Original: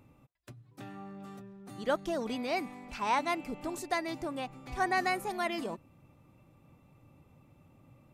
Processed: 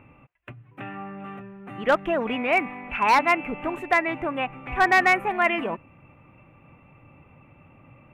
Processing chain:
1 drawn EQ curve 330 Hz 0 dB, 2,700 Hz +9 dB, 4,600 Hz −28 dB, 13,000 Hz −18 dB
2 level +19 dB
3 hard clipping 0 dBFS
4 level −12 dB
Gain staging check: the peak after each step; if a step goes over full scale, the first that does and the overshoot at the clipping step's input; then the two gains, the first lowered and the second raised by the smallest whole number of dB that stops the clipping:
−13.5, +5.5, 0.0, −12.0 dBFS
step 2, 5.5 dB
step 2 +13 dB, step 4 −6 dB

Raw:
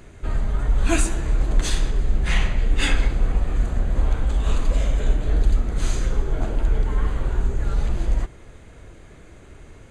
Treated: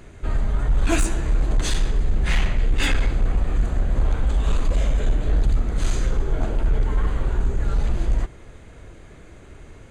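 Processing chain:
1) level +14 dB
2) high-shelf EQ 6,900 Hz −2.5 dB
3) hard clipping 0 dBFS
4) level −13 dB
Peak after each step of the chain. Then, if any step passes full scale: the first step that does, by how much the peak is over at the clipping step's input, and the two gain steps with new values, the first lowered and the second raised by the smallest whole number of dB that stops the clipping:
+7.5, +7.5, 0.0, −13.0 dBFS
step 1, 7.5 dB
step 1 +6 dB, step 4 −5 dB

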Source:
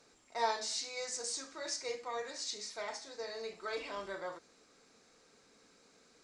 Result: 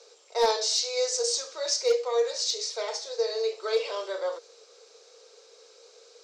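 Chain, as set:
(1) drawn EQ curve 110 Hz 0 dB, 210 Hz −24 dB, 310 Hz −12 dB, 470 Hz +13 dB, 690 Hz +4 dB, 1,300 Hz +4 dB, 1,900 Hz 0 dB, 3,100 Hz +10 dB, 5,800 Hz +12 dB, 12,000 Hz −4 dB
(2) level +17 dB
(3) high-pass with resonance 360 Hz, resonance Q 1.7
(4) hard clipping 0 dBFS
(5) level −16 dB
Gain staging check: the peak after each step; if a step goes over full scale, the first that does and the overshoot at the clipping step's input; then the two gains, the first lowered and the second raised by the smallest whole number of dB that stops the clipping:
−13.5, +3.5, +5.0, 0.0, −16.0 dBFS
step 2, 5.0 dB
step 2 +12 dB, step 5 −11 dB

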